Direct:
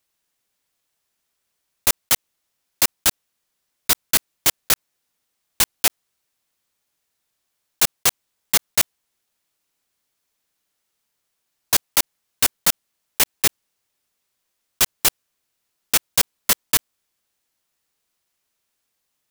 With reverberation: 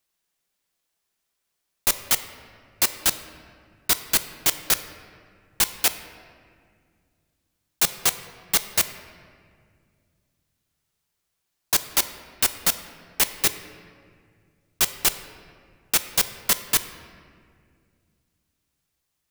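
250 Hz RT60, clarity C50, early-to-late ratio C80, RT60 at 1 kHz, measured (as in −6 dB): 3.0 s, 11.5 dB, 12.5 dB, 1.9 s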